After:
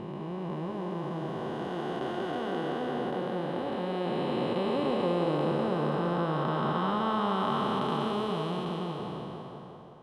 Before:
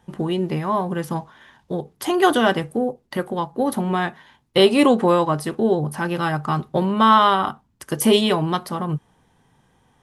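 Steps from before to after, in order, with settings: time blur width 1.47 s; LPF 5700 Hz 12 dB/oct; narrowing echo 0.173 s, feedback 73%, band-pass 610 Hz, level -4 dB; gain -5 dB

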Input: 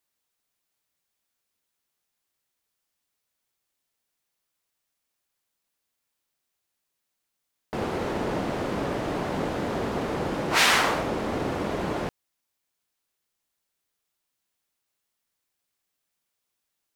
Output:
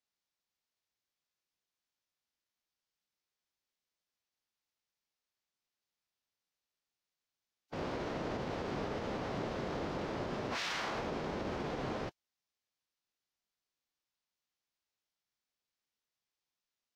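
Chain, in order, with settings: resonant high shelf 7300 Hz -9.5 dB, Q 1.5; formant-preserving pitch shift -5.5 st; limiter -20.5 dBFS, peak gain reduction 11 dB; gain -8 dB

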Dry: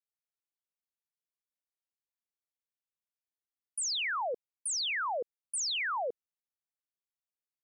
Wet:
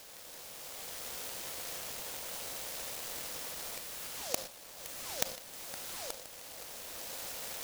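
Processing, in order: per-bin compression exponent 0.2; recorder AGC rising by 9.3 dB/s; gate -19 dBFS, range -26 dB; 4.07–5.09 air absorption 160 m; tape echo 0.517 s, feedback 60%, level -13 dB; on a send at -9 dB: reverb, pre-delay 28 ms; on the sum: noise-modulated delay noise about 5100 Hz, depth 0.26 ms; gain +8.5 dB

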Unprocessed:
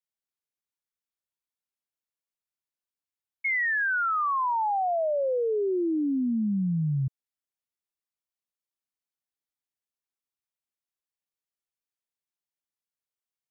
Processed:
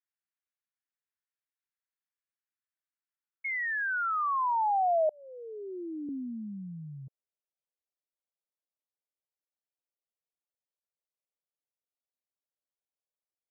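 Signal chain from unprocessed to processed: band-pass sweep 1700 Hz -> 550 Hz, 2.97–5.11; 5.09–6.09 Chebyshev band-stop 260–2000 Hz, order 2; gain +2 dB

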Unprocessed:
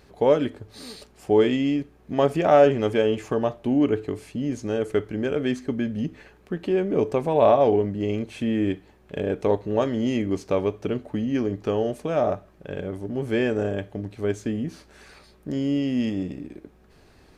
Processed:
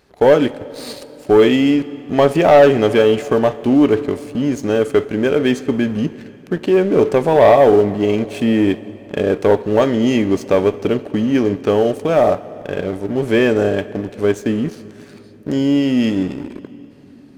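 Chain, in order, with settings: low shelf 130 Hz -8 dB; sample leveller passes 2; on a send: reverb RT60 3.8 s, pre-delay 7 ms, DRR 16 dB; on the sum: gain +3 dB

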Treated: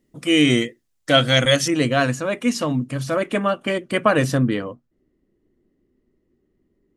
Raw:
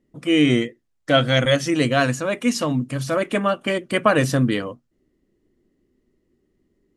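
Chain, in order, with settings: high shelf 3300 Hz +9.5 dB, from 1.68 s -2 dB, from 4.38 s -10 dB

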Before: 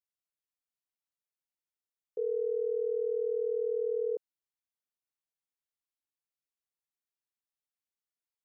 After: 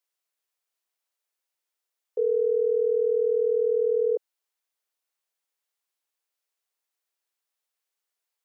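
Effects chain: HPF 380 Hz 24 dB/oct; gain +9 dB

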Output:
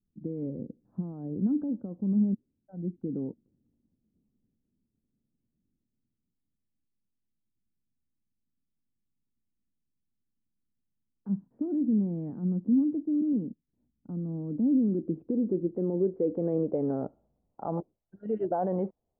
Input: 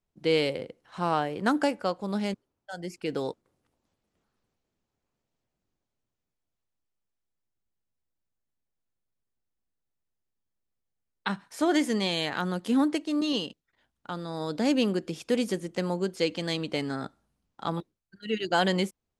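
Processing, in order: LPF 1300 Hz 12 dB/oct; limiter -25 dBFS, peak gain reduction 11.5 dB; low-pass sweep 240 Hz -> 690 Hz, 14.43–17.61; gain +1.5 dB

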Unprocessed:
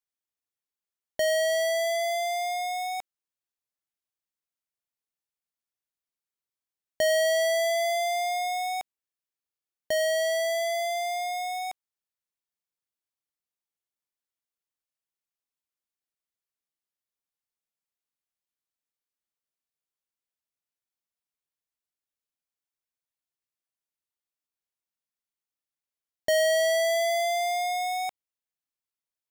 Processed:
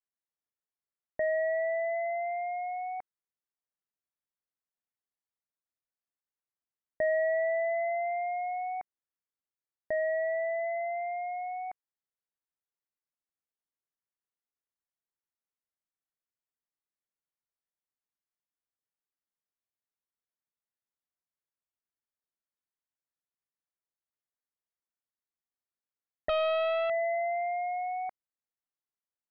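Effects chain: steep low-pass 2100 Hz 72 dB/oct; 26.29–26.9 Doppler distortion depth 0.5 ms; gain -4 dB

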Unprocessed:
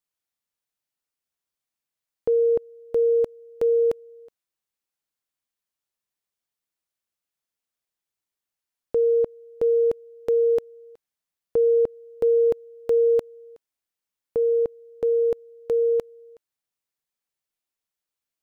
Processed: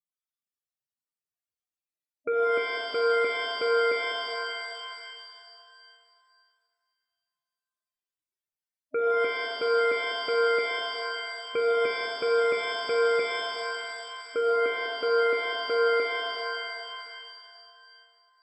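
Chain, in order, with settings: loudest bins only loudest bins 16; added harmonics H 5 -10 dB, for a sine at -14 dBFS; shimmer reverb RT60 2.4 s, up +7 st, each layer -2 dB, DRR 1.5 dB; gain -7 dB

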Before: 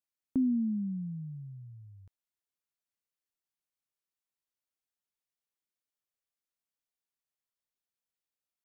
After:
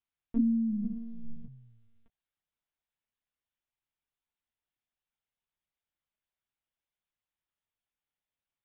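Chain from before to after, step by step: HPF 180 Hz 12 dB/oct; 0.82–1.46 flutter echo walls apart 3.3 m, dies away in 1.3 s; monotone LPC vocoder at 8 kHz 230 Hz; gain +2.5 dB

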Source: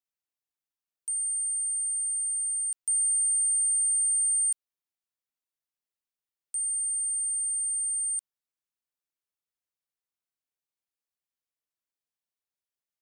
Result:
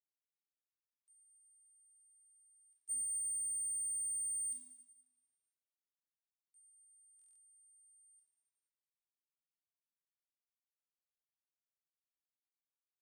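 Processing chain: Wiener smoothing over 9 samples; gate -27 dBFS, range -36 dB; LPF 8100 Hz 12 dB/oct; compressor 12:1, threshold -49 dBFS, peak gain reduction 9 dB; tilt +3 dB/oct; hard clip -40 dBFS, distortion -20 dB; reverb RT60 1.1 s, pre-delay 6 ms, DRR -3 dB; stuck buffer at 7.17, samples 1024, times 8

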